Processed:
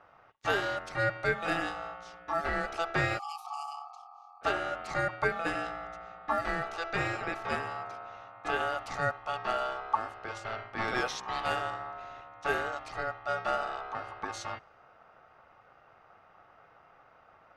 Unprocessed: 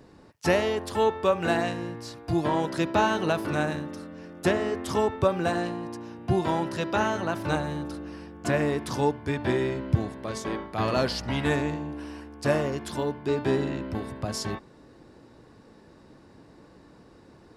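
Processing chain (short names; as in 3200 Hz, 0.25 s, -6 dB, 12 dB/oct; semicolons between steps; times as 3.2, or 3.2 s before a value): low-pass opened by the level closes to 2500 Hz, open at -20 dBFS; spectral delete 3.19–4.42, 300–3200 Hz; ring modulator 1000 Hz; gain -3.5 dB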